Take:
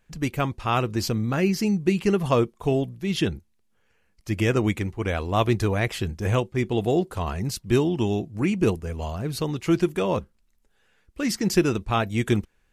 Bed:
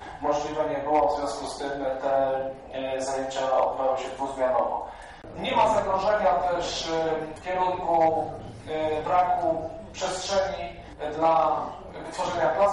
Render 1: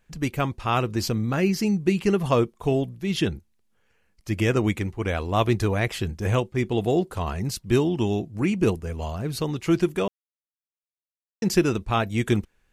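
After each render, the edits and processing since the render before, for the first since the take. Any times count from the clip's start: 10.08–11.42 mute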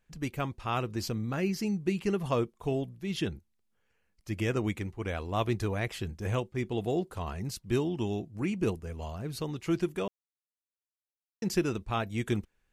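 gain -8 dB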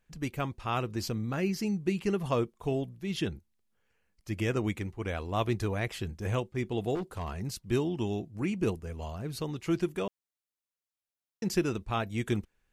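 6.95–7.41 hard clip -30.5 dBFS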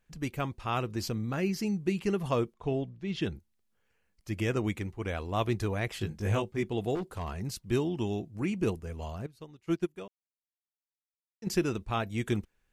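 2.54–3.22 air absorption 110 m; 5.99–6.63 doubler 19 ms -2.5 dB; 9.26–11.47 upward expander 2.5:1, over -39 dBFS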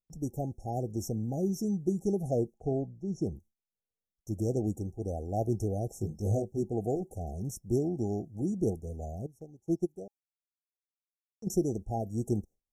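FFT band-reject 820–5400 Hz; gate with hold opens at -50 dBFS

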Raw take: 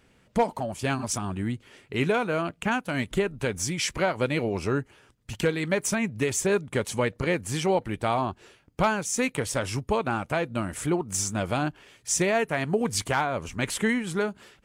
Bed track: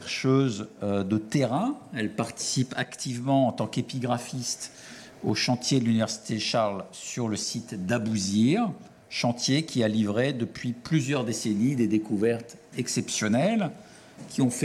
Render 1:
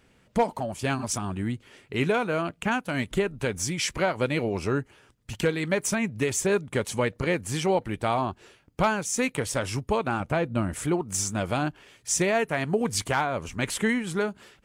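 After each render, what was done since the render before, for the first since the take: 10.2–10.74 tilt -1.5 dB/oct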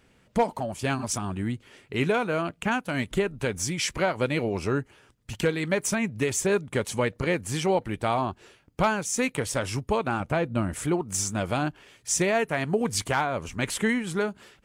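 nothing audible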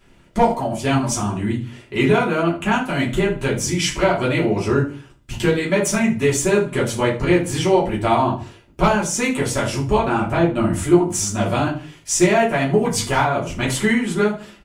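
feedback echo 76 ms, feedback 28%, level -16.5 dB; shoebox room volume 120 m³, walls furnished, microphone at 3 m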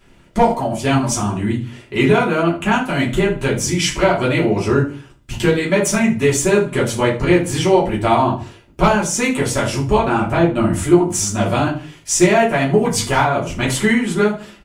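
gain +2.5 dB; limiter -1 dBFS, peak gain reduction 1.5 dB

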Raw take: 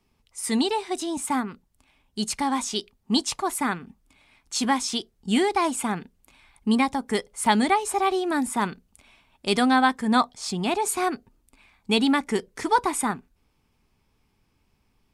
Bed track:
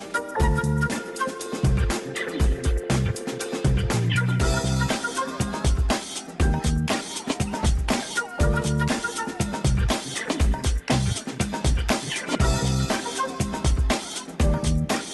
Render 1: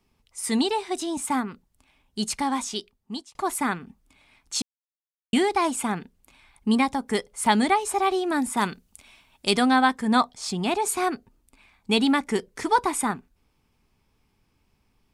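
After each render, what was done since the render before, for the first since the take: 2.19–3.35 fade out equal-power; 4.62–5.33 mute; 8.57–9.51 high shelf 3000 Hz +8 dB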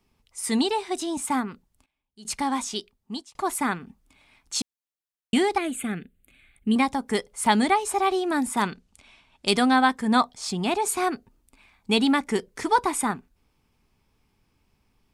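1.5–2.61 dip -19.5 dB, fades 0.36 s logarithmic; 5.58–6.76 fixed phaser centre 2300 Hz, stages 4; 8.62–9.48 air absorption 62 m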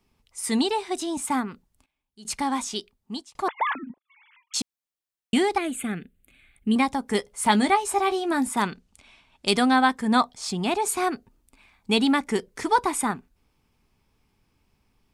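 3.48–4.54 sine-wave speech; 7.1–8.5 doubler 15 ms -10 dB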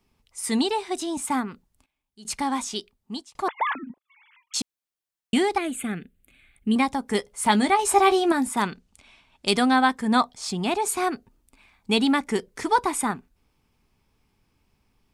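7.79–8.32 gain +5.5 dB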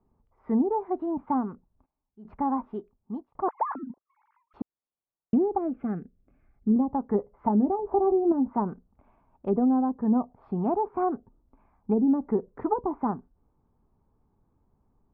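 treble ducked by the level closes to 470 Hz, closed at -17.5 dBFS; LPF 1100 Hz 24 dB/oct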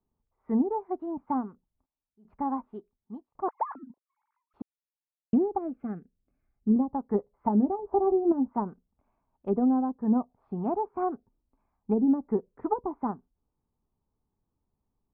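upward expander 1.5:1, over -43 dBFS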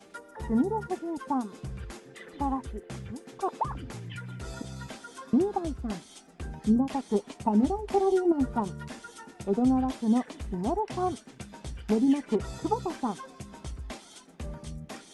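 add bed track -17.5 dB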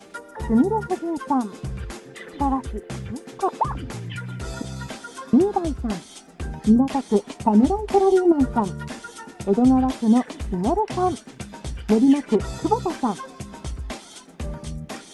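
gain +7.5 dB

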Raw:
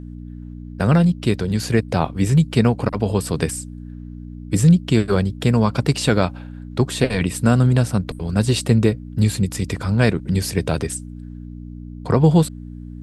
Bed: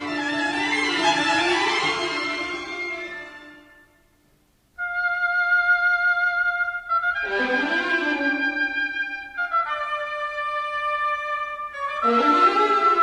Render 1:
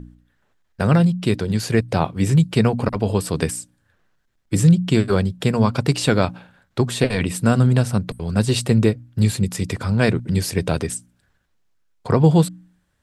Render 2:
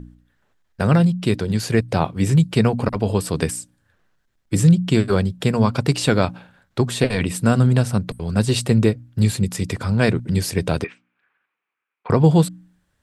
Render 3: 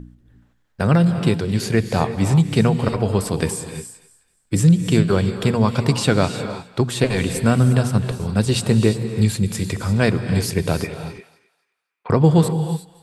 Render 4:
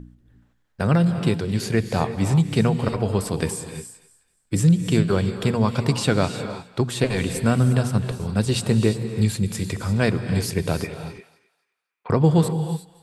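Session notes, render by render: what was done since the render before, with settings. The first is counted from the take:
de-hum 60 Hz, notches 5
10.84–12.1 speaker cabinet 500–2700 Hz, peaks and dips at 610 Hz -10 dB, 1200 Hz +5 dB, 2400 Hz +10 dB
thinning echo 0.261 s, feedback 25%, high-pass 880 Hz, level -17 dB; non-linear reverb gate 0.38 s rising, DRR 9 dB
gain -3 dB

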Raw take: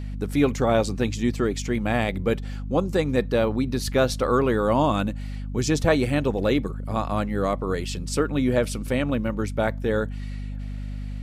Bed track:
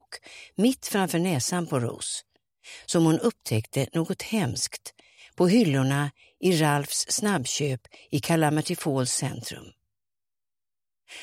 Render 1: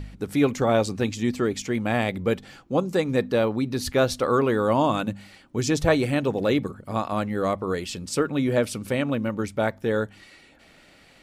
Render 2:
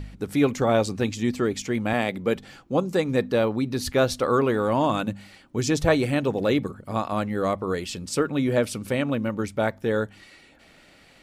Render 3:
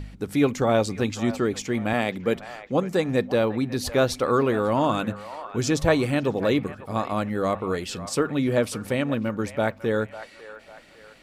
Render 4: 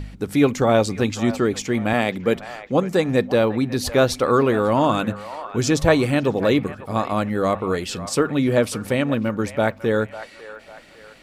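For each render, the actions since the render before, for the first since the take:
de-hum 50 Hz, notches 5
1.93–2.36 HPF 150 Hz; 4.51–4.92 transient shaper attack -10 dB, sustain -5 dB
band-limited delay 0.549 s, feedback 40%, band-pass 1200 Hz, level -12 dB
gain +4 dB

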